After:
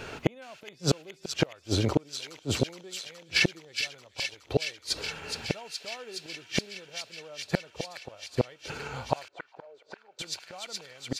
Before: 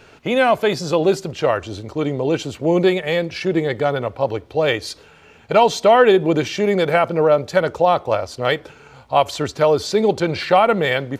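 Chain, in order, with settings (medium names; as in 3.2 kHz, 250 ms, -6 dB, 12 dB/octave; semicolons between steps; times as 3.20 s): inverted gate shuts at -15 dBFS, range -38 dB; feedback echo behind a high-pass 419 ms, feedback 81%, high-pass 2.4 kHz, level -5 dB; 9.28–10.19 s: auto-wah 340–1800 Hz, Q 3.7, up, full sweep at -27 dBFS; trim +6 dB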